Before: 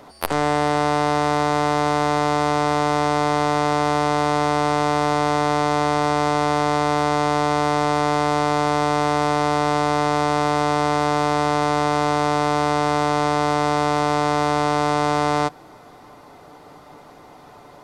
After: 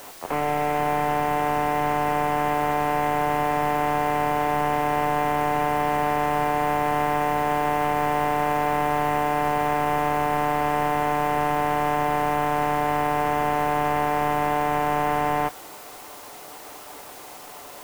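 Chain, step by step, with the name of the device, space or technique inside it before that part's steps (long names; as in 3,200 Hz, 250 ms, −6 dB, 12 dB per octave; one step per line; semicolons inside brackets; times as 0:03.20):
army field radio (band-pass filter 360–3,400 Hz; variable-slope delta modulation 16 kbit/s; white noise bed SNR 21 dB)
level +2.5 dB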